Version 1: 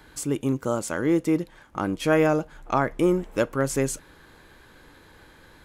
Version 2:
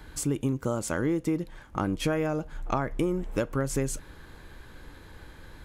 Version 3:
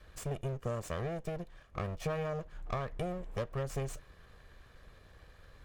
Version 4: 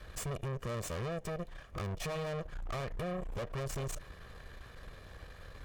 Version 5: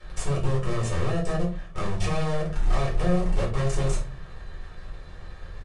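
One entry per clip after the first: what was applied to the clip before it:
low shelf 120 Hz +11.5 dB; compressor 10:1, threshold -23 dBFS, peak gain reduction 10 dB
minimum comb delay 1.7 ms; high shelf 6800 Hz -6.5 dB; gain -8 dB
tube stage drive 44 dB, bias 0.5; gain +9 dB
in parallel at -3.5 dB: requantised 6-bit, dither none; on the sum: shoebox room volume 220 m³, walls furnished, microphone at 4.3 m; downsampling 22050 Hz; gain -3.5 dB

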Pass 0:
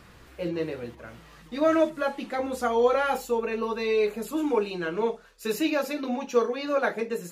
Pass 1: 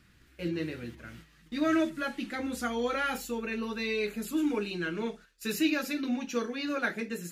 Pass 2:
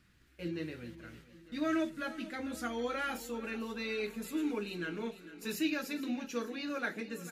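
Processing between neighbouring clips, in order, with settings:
band shelf 700 Hz -11 dB; gate -49 dBFS, range -9 dB
feedback echo 0.449 s, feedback 58%, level -15.5 dB; gain -5.5 dB

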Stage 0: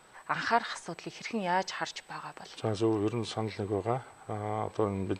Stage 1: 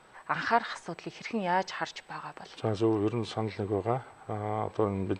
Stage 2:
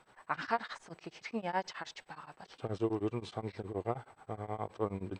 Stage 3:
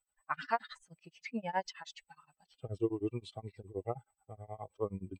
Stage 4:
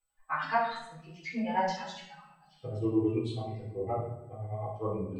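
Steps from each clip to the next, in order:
LPF 3600 Hz 6 dB/oct; gain +1.5 dB
beating tremolo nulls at 9.5 Hz; gain -4.5 dB
per-bin expansion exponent 2; gain +2.5 dB
shoebox room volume 230 m³, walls mixed, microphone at 3.9 m; gain -6 dB

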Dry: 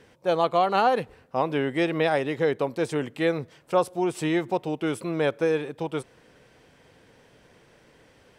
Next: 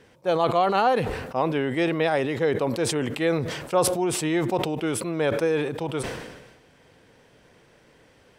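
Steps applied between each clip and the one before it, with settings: sustainer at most 48 dB/s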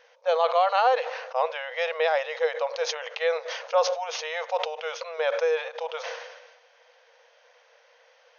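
FFT band-pass 460–6700 Hz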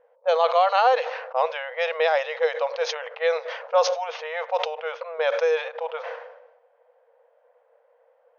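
low-pass opened by the level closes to 630 Hz, open at -20 dBFS; gain +2.5 dB

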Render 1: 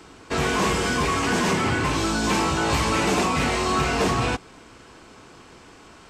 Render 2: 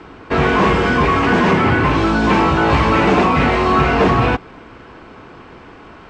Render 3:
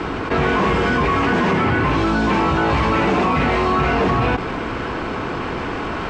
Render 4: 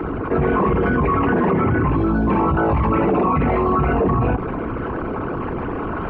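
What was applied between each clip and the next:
LPF 2400 Hz 12 dB/oct; gain +9 dB
fast leveller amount 70%; gain -5.5 dB
formant sharpening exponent 2

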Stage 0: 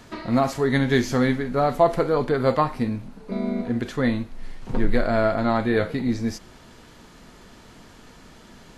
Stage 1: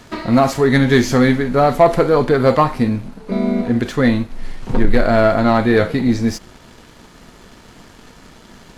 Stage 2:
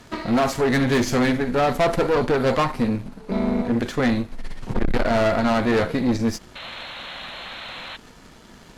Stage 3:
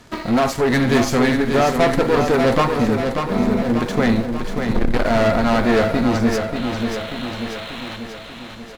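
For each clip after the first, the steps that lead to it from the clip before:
sample leveller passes 1; gain +4.5 dB
tube stage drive 15 dB, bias 0.7; painted sound noise, 6.55–7.97, 490–4300 Hz -36 dBFS
in parallel at -9.5 dB: sample gate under -29.5 dBFS; on the sum: feedback echo 0.588 s, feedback 57%, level -6 dB

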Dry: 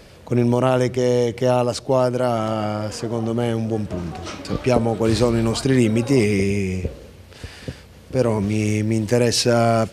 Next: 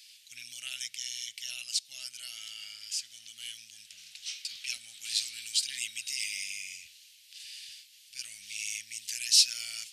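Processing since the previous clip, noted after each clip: inverse Chebyshev high-pass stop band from 1100 Hz, stop band 50 dB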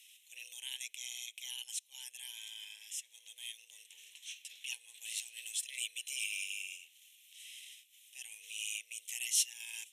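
transient shaper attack -4 dB, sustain -8 dB; frequency shift +260 Hz; fixed phaser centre 1300 Hz, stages 6; gain +1.5 dB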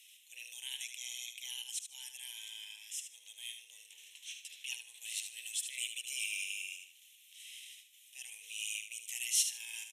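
feedback echo 75 ms, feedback 26%, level -8 dB

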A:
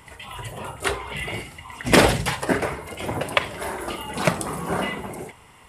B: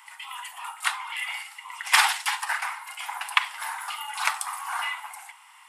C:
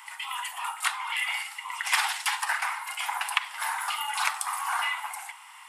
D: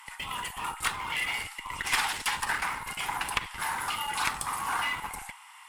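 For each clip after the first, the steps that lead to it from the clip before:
steep high-pass 810 Hz 72 dB/oct
compressor 3:1, threshold -29 dBFS, peak gain reduction 12 dB; gain +4 dB
in parallel at -11.5 dB: Schmitt trigger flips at -30.5 dBFS; on the sum: tube stage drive 14 dB, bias 0.55

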